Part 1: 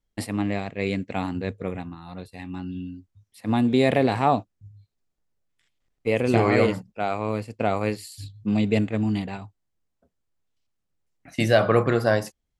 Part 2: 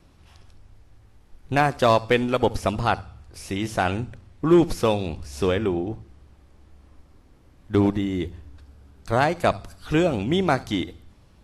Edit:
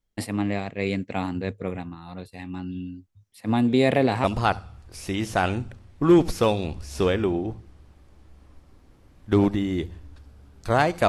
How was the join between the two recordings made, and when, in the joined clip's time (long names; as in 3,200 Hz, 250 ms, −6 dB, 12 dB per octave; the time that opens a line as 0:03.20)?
part 1
0:04.24: continue with part 2 from 0:02.66